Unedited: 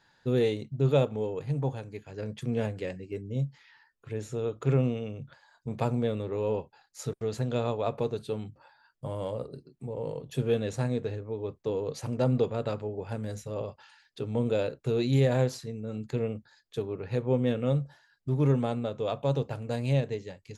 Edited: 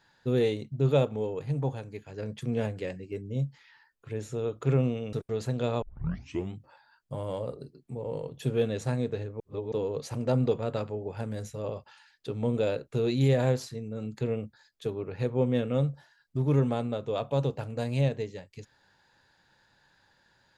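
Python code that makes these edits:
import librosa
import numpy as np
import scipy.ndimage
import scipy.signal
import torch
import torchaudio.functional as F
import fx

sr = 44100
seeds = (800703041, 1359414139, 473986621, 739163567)

y = fx.edit(x, sr, fx.cut(start_s=5.13, length_s=1.92),
    fx.tape_start(start_s=7.74, length_s=0.71),
    fx.reverse_span(start_s=11.32, length_s=0.32), tone=tone)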